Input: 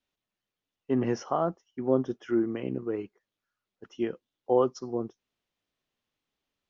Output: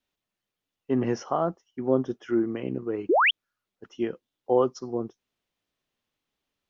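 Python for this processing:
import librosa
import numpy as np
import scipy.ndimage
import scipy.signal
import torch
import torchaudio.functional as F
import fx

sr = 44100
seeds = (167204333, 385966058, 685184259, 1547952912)

y = fx.spec_paint(x, sr, seeds[0], shape='rise', start_s=3.09, length_s=0.22, low_hz=290.0, high_hz=3500.0, level_db=-21.0)
y = y * librosa.db_to_amplitude(1.5)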